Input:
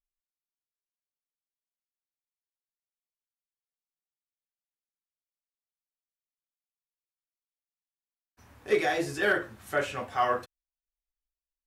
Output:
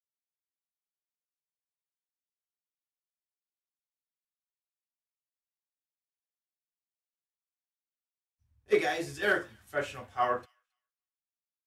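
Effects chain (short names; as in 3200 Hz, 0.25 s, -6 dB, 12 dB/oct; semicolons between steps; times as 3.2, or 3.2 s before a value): thin delay 0.271 s, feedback 44%, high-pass 3300 Hz, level -15 dB; three-band expander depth 100%; gain -4 dB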